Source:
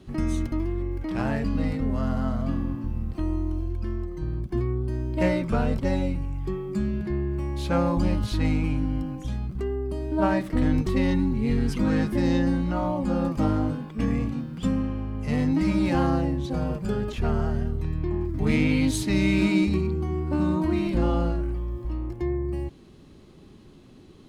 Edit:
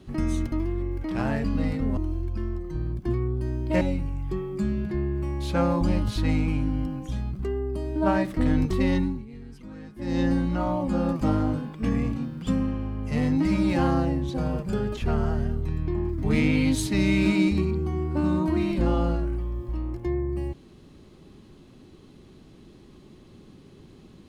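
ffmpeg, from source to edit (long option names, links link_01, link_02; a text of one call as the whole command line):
ffmpeg -i in.wav -filter_complex "[0:a]asplit=5[link_01][link_02][link_03][link_04][link_05];[link_01]atrim=end=1.972[link_06];[link_02]atrim=start=3.438:end=5.282[link_07];[link_03]atrim=start=5.968:end=11.42,asetpts=PTS-STARTPTS,afade=type=out:start_time=5.162:duration=0.29:silence=0.11885[link_08];[link_04]atrim=start=11.42:end=12.12,asetpts=PTS-STARTPTS,volume=-18.5dB[link_09];[link_05]atrim=start=12.12,asetpts=PTS-STARTPTS,afade=type=in:duration=0.29:silence=0.11885[link_10];[link_06][link_07]acrossfade=duration=0.004:curve1=hsin:curve2=hsin[link_11];[link_08][link_09][link_10]concat=n=3:v=0:a=1[link_12];[link_11][link_12]acrossfade=duration=0.004:curve1=hsin:curve2=hsin" out.wav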